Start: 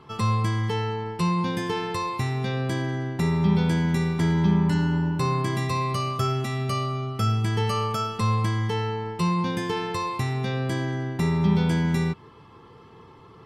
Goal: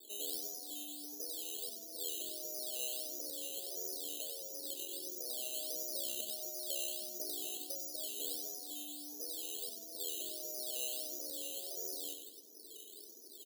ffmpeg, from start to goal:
ffmpeg -i in.wav -af "afftfilt=real='re*lt(hypot(re,im),0.112)':imag='im*lt(hypot(re,im),0.112)':win_size=1024:overlap=0.75,afreqshift=-34,asuperpass=centerf=390:order=12:qfactor=0.98,acrusher=samples=10:mix=1:aa=0.000001:lfo=1:lforange=6:lforate=1.5,aderivative,aecho=1:1:95|190|285|380:0.447|0.152|0.0516|0.0176,volume=14.5dB" out.wav

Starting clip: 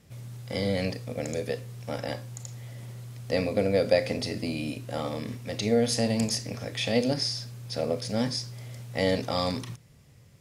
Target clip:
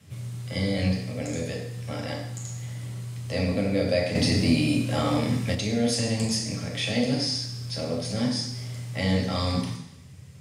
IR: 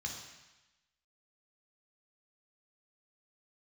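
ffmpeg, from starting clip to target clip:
-filter_complex "[0:a]asplit=2[link_01][link_02];[link_02]acompressor=threshold=-40dB:ratio=6,volume=0dB[link_03];[link_01][link_03]amix=inputs=2:normalize=0[link_04];[1:a]atrim=start_sample=2205,asetrate=57330,aresample=44100[link_05];[link_04][link_05]afir=irnorm=-1:irlink=0,asettb=1/sr,asplit=3[link_06][link_07][link_08];[link_06]atrim=end=4.154[link_09];[link_07]atrim=start=4.15:end=5.55,asetpts=PTS-STARTPTS,afade=type=in:duration=0.004:curve=qsin,afade=type=out:start_time=1.396:duration=0.004:curve=qsin,acontrast=62[link_10];[link_08]atrim=start=5.546[link_11];[link_09][link_10]acrossfade=duration=0.004:curve1=hsin:curve2=qsin[link_12];[link_12][link_11]acrossfade=duration=0.004:curve1=qsin:curve2=hsin,volume=1.5dB"

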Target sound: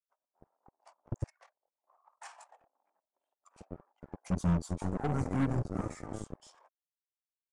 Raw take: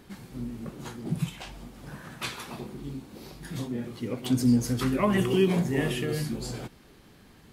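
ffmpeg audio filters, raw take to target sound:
ffmpeg -i in.wav -filter_complex "[0:a]aeval=exprs='0.251*(cos(1*acos(clip(val(0)/0.251,-1,1)))-cos(1*PI/2))+0.02*(cos(4*acos(clip(val(0)/0.251,-1,1)))-cos(4*PI/2))':channel_layout=same,anlmdn=0.398,agate=range=-50dB:threshold=-57dB:ratio=16:detection=peak,asetrate=31183,aresample=44100,atempo=1.41421,acrossover=split=630|5500[link_01][link_02][link_03];[link_01]acrusher=bits=3:mix=0:aa=0.5[link_04];[link_02]bandpass=frequency=820:width_type=q:width=1.8:csg=0[link_05];[link_04][link_05][link_03]amix=inputs=3:normalize=0,volume=-7.5dB" out.wav

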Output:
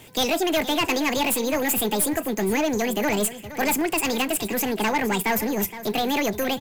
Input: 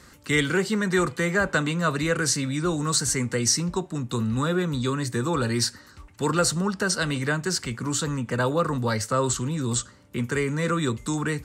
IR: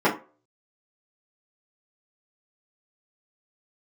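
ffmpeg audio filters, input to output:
-filter_complex "[0:a]asetrate=76440,aresample=44100,asplit=2[link_01][link_02];[link_02]acrusher=bits=5:mode=log:mix=0:aa=0.000001,volume=-4.5dB[link_03];[link_01][link_03]amix=inputs=2:normalize=0,aeval=exprs='(tanh(7.08*val(0)+0.25)-tanh(0.25))/7.08':channel_layout=same,aecho=1:1:468:0.2"

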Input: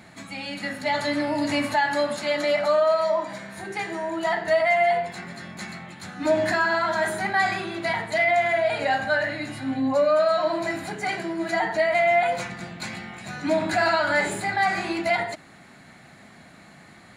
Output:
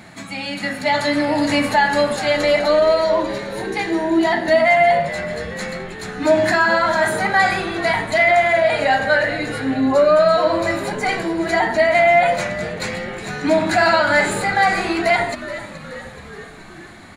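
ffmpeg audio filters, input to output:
ffmpeg -i in.wav -filter_complex "[0:a]asettb=1/sr,asplit=3[link_01][link_02][link_03];[link_01]atrim=end=2.564[link_04];[link_02]atrim=start=2.56:end=4.56,asetpts=PTS-STARTPTS,afade=type=in:duration=0.004:curve=qsin,afade=type=out:start_time=1.996:duration=0.004:curve=qsin,equalizer=frequency=315:width_type=o:width=0.33:gain=11,equalizer=frequency=500:width_type=o:width=0.33:gain=-6,equalizer=frequency=1250:width_type=o:width=0.33:gain=-6,equalizer=frequency=4000:width_type=o:width=0.33:gain=4,equalizer=frequency=8000:width_type=o:width=0.33:gain=-5[link_05];[link_03]atrim=start=4.556[link_06];[link_04][link_05]acrossfade=duration=0.004:curve1=hsin:curve2=qsin[link_07];[link_07][link_06]acrossfade=duration=0.004:curve1=qsin:curve2=hsin,asplit=8[link_08][link_09][link_10][link_11][link_12][link_13][link_14][link_15];[link_09]adelay=426,afreqshift=-86,volume=-14.5dB[link_16];[link_10]adelay=852,afreqshift=-172,volume=-18.4dB[link_17];[link_11]adelay=1278,afreqshift=-258,volume=-22.3dB[link_18];[link_12]adelay=1704,afreqshift=-344,volume=-26.1dB[link_19];[link_13]adelay=2130,afreqshift=-430,volume=-30dB[link_20];[link_14]adelay=2556,afreqshift=-516,volume=-33.9dB[link_21];[link_15]adelay=2982,afreqshift=-602,volume=-37.8dB[link_22];[link_08][link_16][link_17][link_18][link_19][link_20][link_21][link_22]amix=inputs=8:normalize=0,volume=6.5dB" out.wav

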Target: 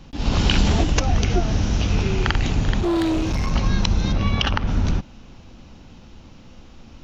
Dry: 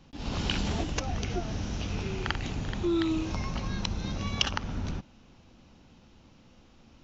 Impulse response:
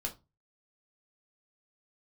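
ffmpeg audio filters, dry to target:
-filter_complex "[0:a]lowshelf=frequency=64:gain=8,asettb=1/sr,asplit=3[link_01][link_02][link_03];[link_01]atrim=end=2.804[link_04];[link_02]atrim=start=2.8:end=3.51,asetpts=PTS-STARTPTS,afade=type=in:duration=0.004:curve=qsin,afade=type=out:start_time=0.706:duration=0.004:curve=qsin,asoftclip=type=hard:threshold=-28dB[link_05];[link_03]atrim=start=3.506[link_06];[link_04][link_05]acrossfade=duration=0.004:curve1=hsin:curve2=qsin[link_07];[link_07][link_06]acrossfade=duration=0.004:curve1=qsin:curve2=hsin,asplit=3[link_08][link_09][link_10];[link_08]afade=type=out:start_time=4.12:duration=0.02[link_11];[link_09]lowpass=3700,afade=type=in:start_time=4.12:duration=0.02,afade=type=out:start_time=4.66:duration=0.02[link_12];[link_10]afade=type=in:start_time=4.66:duration=0.02[link_13];[link_11][link_12][link_13]amix=inputs=3:normalize=0,alimiter=level_in=12.5dB:limit=-1dB:release=50:level=0:latency=1,volume=-2.5dB"

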